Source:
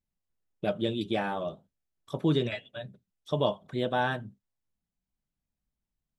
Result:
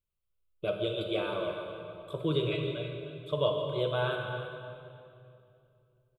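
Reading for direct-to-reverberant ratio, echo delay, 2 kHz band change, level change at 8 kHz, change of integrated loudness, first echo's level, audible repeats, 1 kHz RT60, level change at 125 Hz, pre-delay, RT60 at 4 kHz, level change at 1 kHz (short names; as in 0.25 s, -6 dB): 2.5 dB, 0.314 s, -2.0 dB, n/a, -2.0 dB, -12.5 dB, 1, 2.4 s, -1.0 dB, 30 ms, 2.1 s, -5.0 dB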